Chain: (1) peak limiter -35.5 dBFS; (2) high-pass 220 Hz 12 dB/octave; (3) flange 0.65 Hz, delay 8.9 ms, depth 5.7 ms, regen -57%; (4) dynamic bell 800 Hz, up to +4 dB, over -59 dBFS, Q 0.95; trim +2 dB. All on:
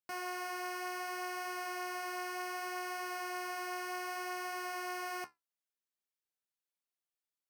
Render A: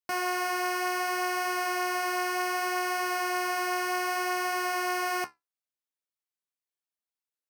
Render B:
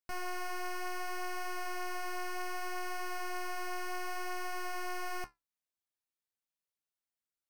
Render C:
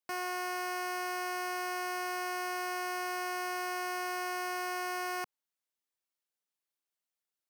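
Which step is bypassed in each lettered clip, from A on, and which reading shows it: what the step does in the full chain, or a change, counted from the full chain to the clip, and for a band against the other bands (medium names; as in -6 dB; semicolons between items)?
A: 1, mean gain reduction 10.5 dB; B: 2, crest factor change -6.0 dB; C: 3, crest factor change -1.5 dB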